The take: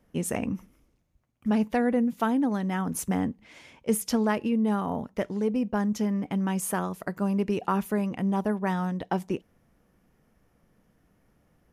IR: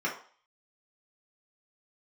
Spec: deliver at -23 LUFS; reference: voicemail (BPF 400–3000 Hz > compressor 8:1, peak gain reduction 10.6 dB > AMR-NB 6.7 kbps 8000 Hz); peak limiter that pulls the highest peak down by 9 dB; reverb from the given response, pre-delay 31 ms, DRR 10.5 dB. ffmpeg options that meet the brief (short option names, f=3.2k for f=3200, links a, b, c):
-filter_complex "[0:a]alimiter=limit=-22dB:level=0:latency=1,asplit=2[a][b];[1:a]atrim=start_sample=2205,adelay=31[c];[b][c]afir=irnorm=-1:irlink=0,volume=-19dB[d];[a][d]amix=inputs=2:normalize=0,highpass=400,lowpass=3k,acompressor=threshold=-38dB:ratio=8,volume=21.5dB" -ar 8000 -c:a libopencore_amrnb -b:a 6700